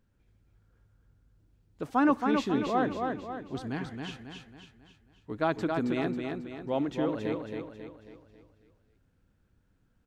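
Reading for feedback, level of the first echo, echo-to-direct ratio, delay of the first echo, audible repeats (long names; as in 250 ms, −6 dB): 46%, −4.5 dB, −3.5 dB, 272 ms, 5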